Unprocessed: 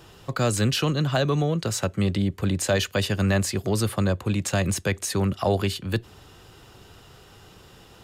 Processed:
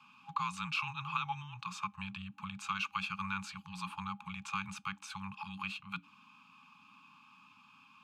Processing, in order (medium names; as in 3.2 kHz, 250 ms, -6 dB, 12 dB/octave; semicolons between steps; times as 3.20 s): FFT band-reject 210–1100 Hz; frequency shift -290 Hz; vowel filter a; trim +6.5 dB